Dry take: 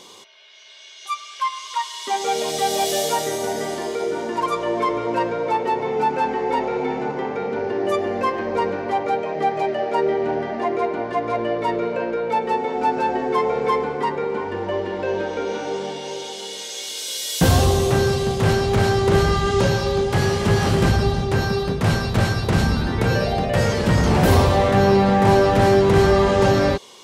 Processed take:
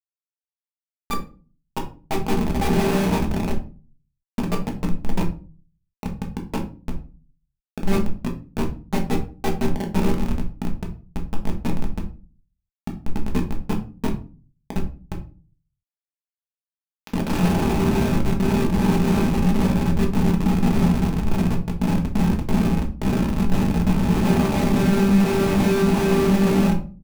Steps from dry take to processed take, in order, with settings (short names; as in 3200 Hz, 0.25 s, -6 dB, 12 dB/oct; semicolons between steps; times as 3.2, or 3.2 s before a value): high shelf 6500 Hz +11.5 dB; notches 50/100/150/200/250/300/350/400/450/500 Hz; comb 5.1 ms, depth 51%; in parallel at +3 dB: compressor 6:1, threshold -27 dBFS, peak gain reduction 17 dB; on the sum: added harmonics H 3 -11 dB, 4 -26 dB, 6 -26 dB, 7 -34 dB, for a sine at -0.5 dBFS; Schmitt trigger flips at -22.5 dBFS; small resonant body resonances 210/830/2500 Hz, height 9 dB, ringing for 30 ms; reverb RT60 0.35 s, pre-delay 5 ms, DRR 1 dB